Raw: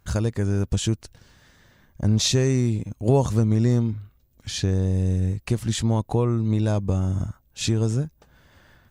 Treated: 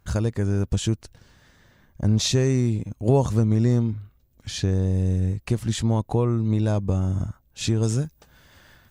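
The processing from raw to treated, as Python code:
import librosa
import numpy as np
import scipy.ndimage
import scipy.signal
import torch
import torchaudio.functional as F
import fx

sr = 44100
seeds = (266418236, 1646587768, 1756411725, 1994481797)

y = fx.high_shelf(x, sr, hz=2200.0, db=fx.steps((0.0, -2.5), (7.82, 7.0)))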